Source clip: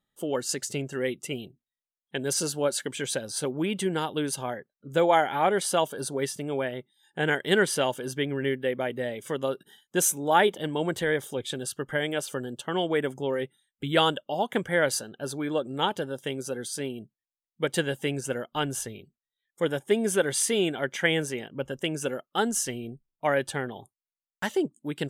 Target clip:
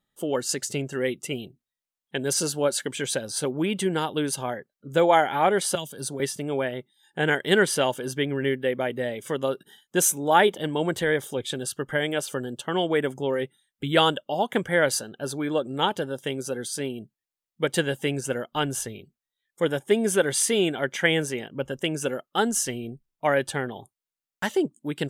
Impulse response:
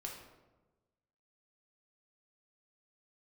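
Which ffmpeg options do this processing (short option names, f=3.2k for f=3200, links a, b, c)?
-filter_complex "[0:a]asettb=1/sr,asplit=3[a][b][c];[a]atrim=end=5.754[d];[b]atrim=start=5.75:end=6.2,asetpts=PTS-STARTPTS,afade=t=in:d=0.004:c=qsin,afade=t=out:st=0.446:d=0.004:c=qsin,acrossover=split=230|3000[e][f][g];[f]acompressor=threshold=-38dB:ratio=6[h];[e][h][g]amix=inputs=3:normalize=0[i];[c]atrim=start=6.196[j];[d][i]acrossfade=d=0.004:c1=hsin:c2=qsin[k];[k][j]acrossfade=d=0.004:c1=qsin:c2=hsin,volume=2.5dB"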